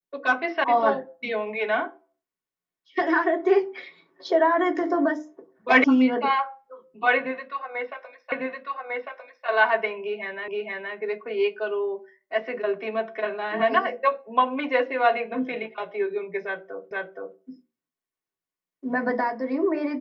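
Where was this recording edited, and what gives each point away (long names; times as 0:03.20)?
0:00.64: cut off before it has died away
0:05.84: cut off before it has died away
0:08.32: the same again, the last 1.15 s
0:10.48: the same again, the last 0.47 s
0:16.91: the same again, the last 0.47 s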